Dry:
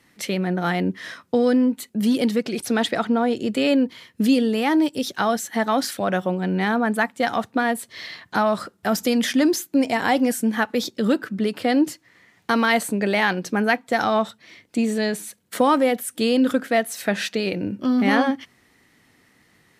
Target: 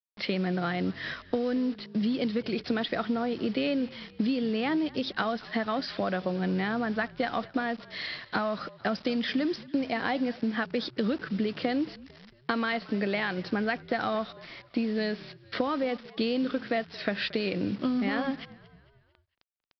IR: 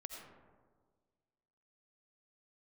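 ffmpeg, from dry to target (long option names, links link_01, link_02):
-filter_complex "[0:a]highpass=frequency=66:width=0.5412,highpass=frequency=66:width=1.3066,equalizer=frequency=880:width=7.7:gain=-6.5,acompressor=threshold=-25dB:ratio=10,aresample=11025,acrusher=bits=7:mix=0:aa=0.000001,aresample=44100,asplit=5[link_01][link_02][link_03][link_04][link_05];[link_02]adelay=225,afreqshift=-46,volume=-20.5dB[link_06];[link_03]adelay=450,afreqshift=-92,volume=-26.7dB[link_07];[link_04]adelay=675,afreqshift=-138,volume=-32.9dB[link_08];[link_05]adelay=900,afreqshift=-184,volume=-39.1dB[link_09];[link_01][link_06][link_07][link_08][link_09]amix=inputs=5:normalize=0"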